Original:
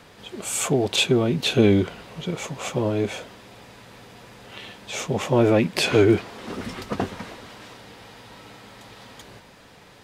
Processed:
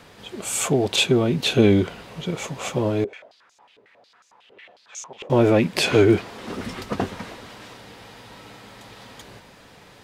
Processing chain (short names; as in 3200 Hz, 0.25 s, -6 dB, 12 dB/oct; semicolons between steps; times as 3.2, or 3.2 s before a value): 3.04–5.3 stepped band-pass 11 Hz 430–6500 Hz; gain +1 dB